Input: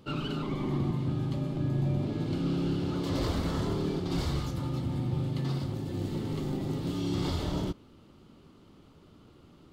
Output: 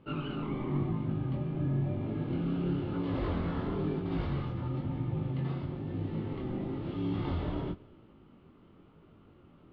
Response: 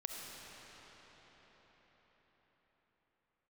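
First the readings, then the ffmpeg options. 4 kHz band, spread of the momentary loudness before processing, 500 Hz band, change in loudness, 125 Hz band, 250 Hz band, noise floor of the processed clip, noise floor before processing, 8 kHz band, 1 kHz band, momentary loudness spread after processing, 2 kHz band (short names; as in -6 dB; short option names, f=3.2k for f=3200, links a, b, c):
-10.0 dB, 4 LU, -2.0 dB, -2.5 dB, -2.5 dB, -2.0 dB, -59 dBFS, -56 dBFS, under -30 dB, -2.0 dB, 4 LU, -2.5 dB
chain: -filter_complex "[0:a]lowpass=f=2.8k:w=0.5412,lowpass=f=2.8k:w=1.3066,flanger=delay=18:depth=6.5:speed=0.99,asplit=2[a][b];[1:a]atrim=start_sample=2205,afade=t=out:st=0.44:d=0.01,atrim=end_sample=19845[c];[b][c]afir=irnorm=-1:irlink=0,volume=-17dB[d];[a][d]amix=inputs=2:normalize=0"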